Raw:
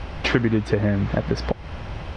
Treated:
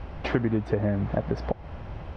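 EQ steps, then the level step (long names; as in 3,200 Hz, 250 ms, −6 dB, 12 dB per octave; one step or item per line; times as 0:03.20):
high-shelf EQ 2,300 Hz −12 dB
dynamic equaliser 700 Hz, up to +5 dB, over −42 dBFS, Q 2.1
−5.0 dB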